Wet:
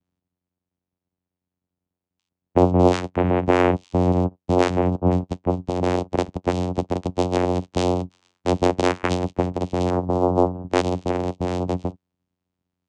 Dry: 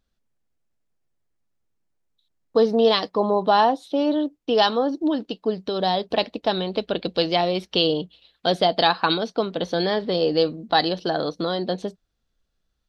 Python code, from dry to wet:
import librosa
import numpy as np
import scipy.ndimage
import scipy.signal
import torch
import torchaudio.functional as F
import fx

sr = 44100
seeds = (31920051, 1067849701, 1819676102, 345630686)

y = fx.vibrato(x, sr, rate_hz=1.3, depth_cents=25.0)
y = fx.vocoder(y, sr, bands=4, carrier='saw', carrier_hz=89.7)
y = fx.high_shelf_res(y, sr, hz=1700.0, db=-10.5, q=1.5, at=(9.9, 10.54))
y = y * librosa.db_to_amplitude(1.5)